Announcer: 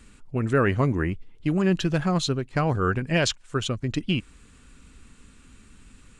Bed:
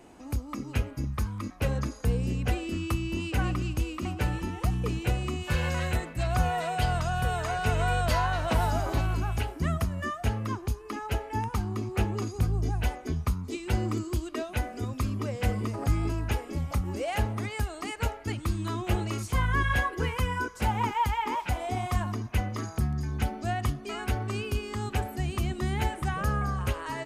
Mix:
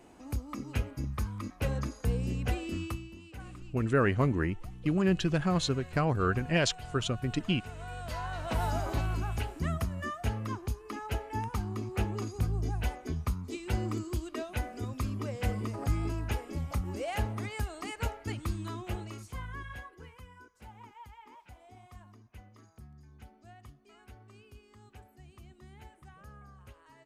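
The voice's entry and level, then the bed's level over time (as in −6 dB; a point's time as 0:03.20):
3.40 s, −4.5 dB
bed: 0:02.82 −3.5 dB
0:03.16 −18 dB
0:07.74 −18 dB
0:08.69 −4 dB
0:18.43 −4 dB
0:20.29 −23.5 dB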